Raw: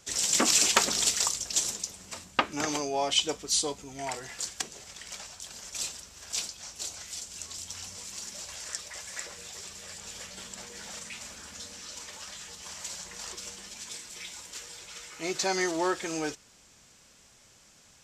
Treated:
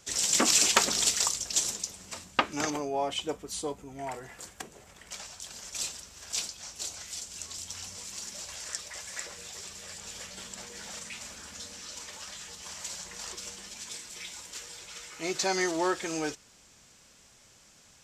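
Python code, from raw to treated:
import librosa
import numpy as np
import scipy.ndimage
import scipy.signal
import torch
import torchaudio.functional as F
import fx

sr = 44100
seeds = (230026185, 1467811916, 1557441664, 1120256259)

y = fx.peak_eq(x, sr, hz=5100.0, db=-13.5, octaves=2.0, at=(2.7, 5.11))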